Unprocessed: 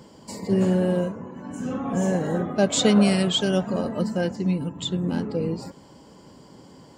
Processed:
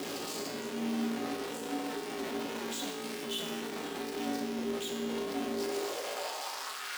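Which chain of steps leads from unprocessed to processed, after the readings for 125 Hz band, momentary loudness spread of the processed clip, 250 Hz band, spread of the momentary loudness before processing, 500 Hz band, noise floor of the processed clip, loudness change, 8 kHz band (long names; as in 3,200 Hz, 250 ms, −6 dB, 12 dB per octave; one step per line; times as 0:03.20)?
−26.0 dB, 3 LU, −13.5 dB, 15 LU, −10.5 dB, −40 dBFS, −12.5 dB, −8.0 dB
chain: sign of each sample alone
parametric band 3,500 Hz +4.5 dB 1.8 octaves
mains hum 60 Hz, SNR 12 dB
tuned comb filter 170 Hz, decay 1 s, harmonics all, mix 90%
ring modulation 230 Hz
high-pass filter sweep 240 Hz → 1,500 Hz, 0:05.48–0:06.94
on a send: feedback echo with a high-pass in the loop 316 ms, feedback 82%, high-pass 170 Hz, level −23.5 dB
on the sum: level +2.5 dB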